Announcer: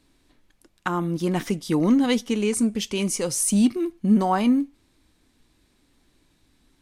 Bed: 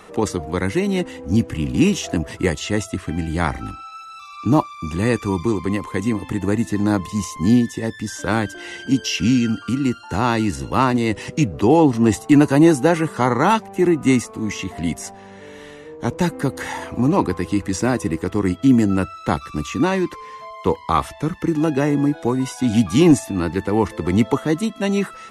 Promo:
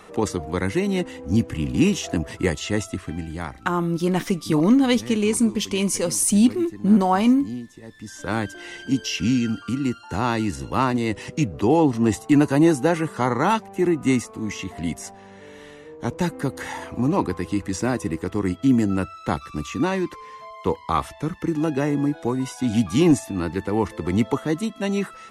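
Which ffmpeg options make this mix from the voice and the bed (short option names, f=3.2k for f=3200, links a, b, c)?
-filter_complex "[0:a]adelay=2800,volume=2.5dB[a];[1:a]volume=11dB,afade=t=out:st=2.83:d=0.81:silence=0.177828,afade=t=in:st=7.86:d=0.57:silence=0.211349[b];[a][b]amix=inputs=2:normalize=0"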